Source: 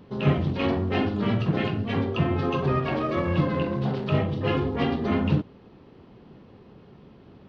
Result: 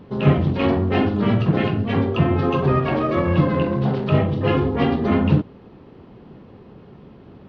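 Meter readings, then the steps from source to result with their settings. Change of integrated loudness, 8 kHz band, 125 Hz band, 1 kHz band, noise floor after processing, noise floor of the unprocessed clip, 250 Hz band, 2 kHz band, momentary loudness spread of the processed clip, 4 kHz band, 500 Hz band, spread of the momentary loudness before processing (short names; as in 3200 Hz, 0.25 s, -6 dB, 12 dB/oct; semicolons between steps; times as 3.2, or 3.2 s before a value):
+6.0 dB, n/a, +6.0 dB, +5.5 dB, -45 dBFS, -51 dBFS, +6.0 dB, +4.0 dB, 3 LU, +2.5 dB, +6.0 dB, 3 LU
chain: high shelf 3300 Hz -7.5 dB; gain +6 dB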